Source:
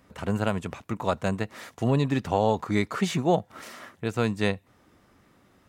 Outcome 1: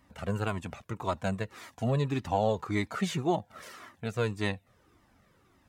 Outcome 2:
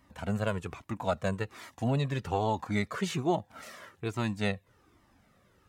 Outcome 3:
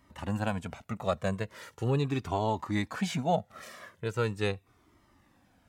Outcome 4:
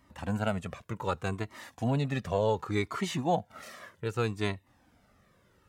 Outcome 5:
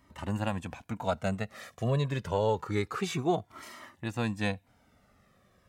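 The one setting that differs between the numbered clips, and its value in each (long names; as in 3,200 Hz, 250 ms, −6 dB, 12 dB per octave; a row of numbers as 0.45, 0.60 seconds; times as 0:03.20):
flanger whose copies keep moving one way, speed: 1.8, 1.2, 0.4, 0.66, 0.27 Hertz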